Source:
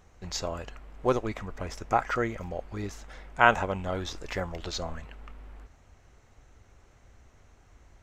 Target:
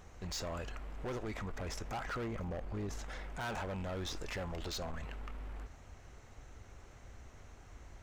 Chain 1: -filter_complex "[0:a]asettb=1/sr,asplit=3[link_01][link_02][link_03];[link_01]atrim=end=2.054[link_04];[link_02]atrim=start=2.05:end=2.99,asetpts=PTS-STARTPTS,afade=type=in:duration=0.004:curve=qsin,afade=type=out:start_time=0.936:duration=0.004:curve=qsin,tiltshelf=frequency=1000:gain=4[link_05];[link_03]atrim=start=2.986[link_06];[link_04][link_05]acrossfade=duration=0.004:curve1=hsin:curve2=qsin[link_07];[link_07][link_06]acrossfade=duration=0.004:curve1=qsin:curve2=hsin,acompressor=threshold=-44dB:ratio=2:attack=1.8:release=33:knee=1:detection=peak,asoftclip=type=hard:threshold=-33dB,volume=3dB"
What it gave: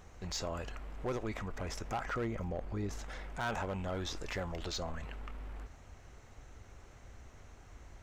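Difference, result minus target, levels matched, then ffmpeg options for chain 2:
hard clipping: distortion −5 dB
-filter_complex "[0:a]asettb=1/sr,asplit=3[link_01][link_02][link_03];[link_01]atrim=end=2.054[link_04];[link_02]atrim=start=2.05:end=2.99,asetpts=PTS-STARTPTS,afade=type=in:duration=0.004:curve=qsin,afade=type=out:start_time=0.936:duration=0.004:curve=qsin,tiltshelf=frequency=1000:gain=4[link_05];[link_03]atrim=start=2.986[link_06];[link_04][link_05]acrossfade=duration=0.004:curve1=hsin:curve2=qsin[link_07];[link_07][link_06]acrossfade=duration=0.004:curve1=qsin:curve2=hsin,acompressor=threshold=-44dB:ratio=2:attack=1.8:release=33:knee=1:detection=peak,asoftclip=type=hard:threshold=-39dB,volume=3dB"

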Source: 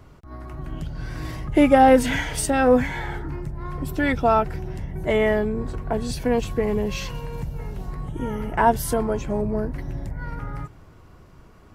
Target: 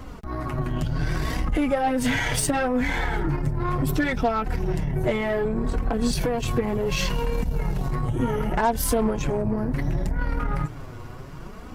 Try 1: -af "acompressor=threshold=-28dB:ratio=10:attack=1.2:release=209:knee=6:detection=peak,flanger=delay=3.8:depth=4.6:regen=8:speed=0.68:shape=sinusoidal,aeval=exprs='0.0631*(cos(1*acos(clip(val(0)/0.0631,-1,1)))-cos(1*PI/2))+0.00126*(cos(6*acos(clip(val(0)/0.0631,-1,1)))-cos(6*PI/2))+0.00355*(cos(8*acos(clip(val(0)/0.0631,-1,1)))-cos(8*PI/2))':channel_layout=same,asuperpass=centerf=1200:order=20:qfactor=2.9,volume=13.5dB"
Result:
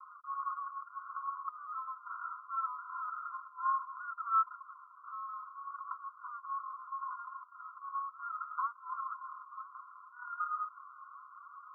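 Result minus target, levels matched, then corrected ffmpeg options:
1,000 Hz band +8.0 dB
-af "acompressor=threshold=-28dB:ratio=10:attack=1.2:release=209:knee=6:detection=peak,flanger=delay=3.8:depth=4.6:regen=8:speed=0.68:shape=sinusoidal,aeval=exprs='0.0631*(cos(1*acos(clip(val(0)/0.0631,-1,1)))-cos(1*PI/2))+0.00126*(cos(6*acos(clip(val(0)/0.0631,-1,1)))-cos(6*PI/2))+0.00355*(cos(8*acos(clip(val(0)/0.0631,-1,1)))-cos(8*PI/2))':channel_layout=same,volume=13.5dB"

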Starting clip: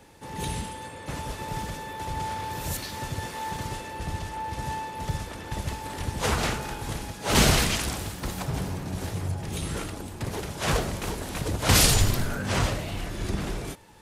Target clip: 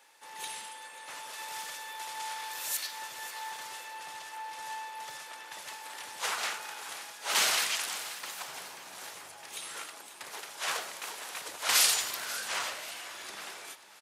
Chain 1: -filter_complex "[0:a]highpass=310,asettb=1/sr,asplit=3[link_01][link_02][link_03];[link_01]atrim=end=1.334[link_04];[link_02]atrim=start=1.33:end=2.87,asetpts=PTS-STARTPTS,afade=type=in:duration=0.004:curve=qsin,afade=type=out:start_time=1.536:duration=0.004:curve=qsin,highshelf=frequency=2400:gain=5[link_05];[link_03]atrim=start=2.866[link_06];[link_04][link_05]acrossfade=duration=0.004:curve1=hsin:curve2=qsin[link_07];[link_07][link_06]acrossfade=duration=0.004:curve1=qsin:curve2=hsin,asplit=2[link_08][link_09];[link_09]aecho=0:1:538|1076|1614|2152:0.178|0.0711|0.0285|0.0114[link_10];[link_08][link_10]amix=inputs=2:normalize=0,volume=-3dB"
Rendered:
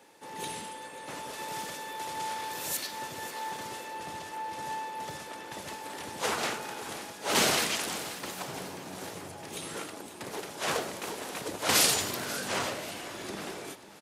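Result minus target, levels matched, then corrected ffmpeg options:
250 Hz band +17.0 dB
-filter_complex "[0:a]highpass=1000,asettb=1/sr,asplit=3[link_01][link_02][link_03];[link_01]atrim=end=1.334[link_04];[link_02]atrim=start=1.33:end=2.87,asetpts=PTS-STARTPTS,afade=type=in:duration=0.004:curve=qsin,afade=type=out:start_time=1.536:duration=0.004:curve=qsin,highshelf=frequency=2400:gain=5[link_05];[link_03]atrim=start=2.866[link_06];[link_04][link_05]acrossfade=duration=0.004:curve1=hsin:curve2=qsin[link_07];[link_07][link_06]acrossfade=duration=0.004:curve1=qsin:curve2=hsin,asplit=2[link_08][link_09];[link_09]aecho=0:1:538|1076|1614|2152:0.178|0.0711|0.0285|0.0114[link_10];[link_08][link_10]amix=inputs=2:normalize=0,volume=-3dB"

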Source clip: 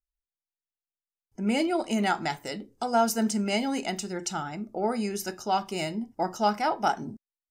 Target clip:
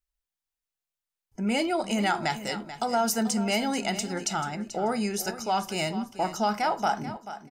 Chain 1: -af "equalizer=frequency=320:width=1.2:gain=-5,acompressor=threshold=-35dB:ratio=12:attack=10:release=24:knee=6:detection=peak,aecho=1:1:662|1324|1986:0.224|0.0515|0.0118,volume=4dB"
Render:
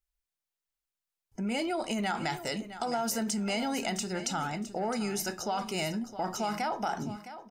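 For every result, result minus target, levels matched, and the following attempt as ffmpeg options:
echo 226 ms late; downward compressor: peak gain reduction +7.5 dB
-af "equalizer=frequency=320:width=1.2:gain=-5,acompressor=threshold=-35dB:ratio=12:attack=10:release=24:knee=6:detection=peak,aecho=1:1:436|872|1308:0.224|0.0515|0.0118,volume=4dB"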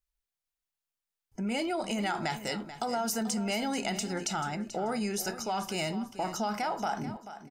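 downward compressor: peak gain reduction +7.5 dB
-af "equalizer=frequency=320:width=1.2:gain=-5,acompressor=threshold=-27dB:ratio=12:attack=10:release=24:knee=6:detection=peak,aecho=1:1:436|872|1308:0.224|0.0515|0.0118,volume=4dB"

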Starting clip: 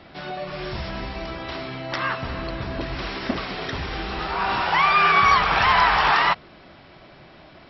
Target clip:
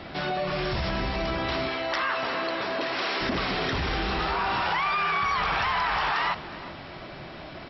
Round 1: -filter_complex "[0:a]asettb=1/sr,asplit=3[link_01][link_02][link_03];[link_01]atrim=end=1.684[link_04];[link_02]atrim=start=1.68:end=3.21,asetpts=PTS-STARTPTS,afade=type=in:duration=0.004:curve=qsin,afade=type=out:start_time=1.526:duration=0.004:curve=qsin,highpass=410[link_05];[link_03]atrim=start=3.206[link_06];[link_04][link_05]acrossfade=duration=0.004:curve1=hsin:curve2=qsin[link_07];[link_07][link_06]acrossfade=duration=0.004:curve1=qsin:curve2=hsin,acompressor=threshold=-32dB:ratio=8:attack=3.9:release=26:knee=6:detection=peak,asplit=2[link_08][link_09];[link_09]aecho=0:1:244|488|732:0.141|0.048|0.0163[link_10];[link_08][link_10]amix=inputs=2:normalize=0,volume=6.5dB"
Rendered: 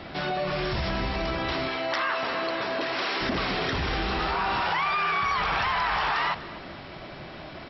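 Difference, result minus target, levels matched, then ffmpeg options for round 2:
echo 119 ms early
-filter_complex "[0:a]asettb=1/sr,asplit=3[link_01][link_02][link_03];[link_01]atrim=end=1.684[link_04];[link_02]atrim=start=1.68:end=3.21,asetpts=PTS-STARTPTS,afade=type=in:duration=0.004:curve=qsin,afade=type=out:start_time=1.526:duration=0.004:curve=qsin,highpass=410[link_05];[link_03]atrim=start=3.206[link_06];[link_04][link_05]acrossfade=duration=0.004:curve1=hsin:curve2=qsin[link_07];[link_07][link_06]acrossfade=duration=0.004:curve1=qsin:curve2=hsin,acompressor=threshold=-32dB:ratio=8:attack=3.9:release=26:knee=6:detection=peak,asplit=2[link_08][link_09];[link_09]aecho=0:1:363|726|1089:0.141|0.048|0.0163[link_10];[link_08][link_10]amix=inputs=2:normalize=0,volume=6.5dB"

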